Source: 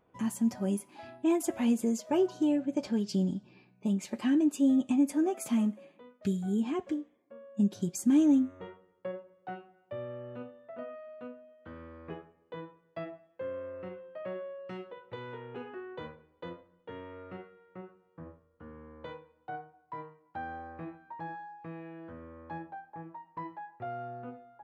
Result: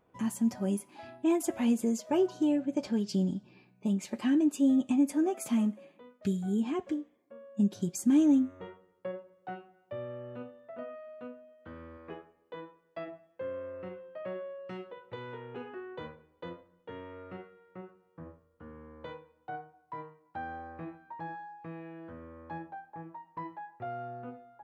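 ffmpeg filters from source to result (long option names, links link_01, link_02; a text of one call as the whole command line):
ffmpeg -i in.wav -filter_complex "[0:a]asettb=1/sr,asplit=3[link_01][link_02][link_03];[link_01]atrim=end=11.974[link_04];[link_02]atrim=start=11.97:end=13.08,asetpts=PTS-STARTPTS,afade=type=in:duration=0.004:curve=qsin,afade=type=out:start_time=1.106:duration=0.004:curve=qsin,equalizer=frequency=120:width_type=o:width=1.2:gain=-12[link_05];[link_03]atrim=start=13.076[link_06];[link_04][link_05]acrossfade=duration=0.004:curve1=hsin:curve2=qsin[link_07];[link_07][link_06]acrossfade=duration=0.004:curve1=qsin:curve2=hsin" out.wav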